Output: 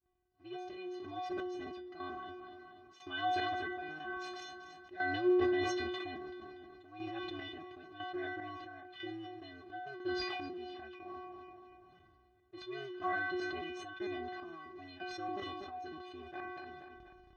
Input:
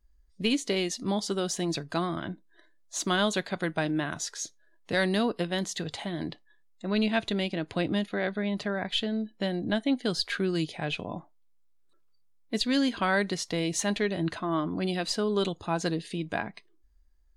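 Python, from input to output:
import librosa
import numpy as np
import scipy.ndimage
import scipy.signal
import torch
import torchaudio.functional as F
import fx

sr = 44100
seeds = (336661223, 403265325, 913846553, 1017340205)

p1 = fx.cycle_switch(x, sr, every=2, mode='inverted')
p2 = scipy.signal.sosfilt(scipy.signal.butter(2, 54.0, 'highpass', fs=sr, output='sos'), p1)
p3 = fx.bass_treble(p2, sr, bass_db=1, treble_db=-7)
p4 = fx.notch(p3, sr, hz=2200.0, q=21.0)
p5 = fx.stiff_resonator(p4, sr, f0_hz=360.0, decay_s=0.5, stiffness=0.008)
p6 = fx.chopper(p5, sr, hz=1.0, depth_pct=65, duty_pct=40)
p7 = fx.air_absorb(p6, sr, metres=210.0)
p8 = fx.notch_comb(p7, sr, f0_hz=480.0)
p9 = p8 + fx.echo_feedback(p8, sr, ms=241, feedback_pct=41, wet_db=-20, dry=0)
p10 = fx.sustainer(p9, sr, db_per_s=21.0)
y = p10 * 10.0 ** (8.0 / 20.0)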